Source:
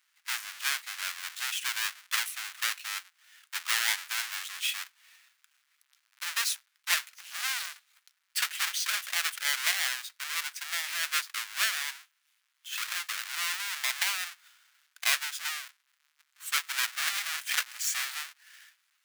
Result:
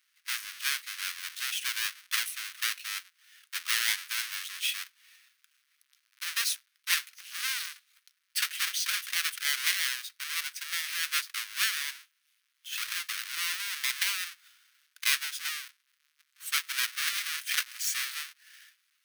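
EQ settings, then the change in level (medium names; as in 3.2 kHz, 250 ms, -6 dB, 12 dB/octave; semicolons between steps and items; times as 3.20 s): static phaser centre 300 Hz, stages 4; band-stop 7.3 kHz, Q 8; +1.0 dB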